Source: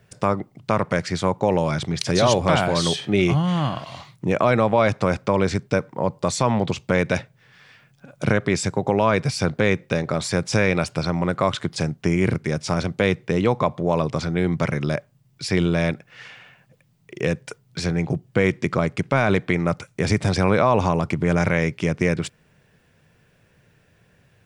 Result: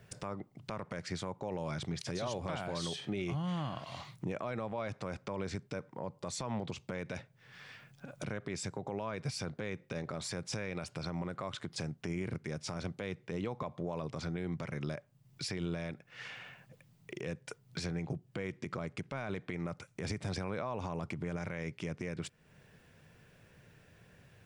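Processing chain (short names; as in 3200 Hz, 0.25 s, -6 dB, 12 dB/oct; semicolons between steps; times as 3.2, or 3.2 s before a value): compressor 2:1, threshold -41 dBFS, peak gain reduction 15 dB; limiter -25 dBFS, peak gain reduction 8.5 dB; gain -2 dB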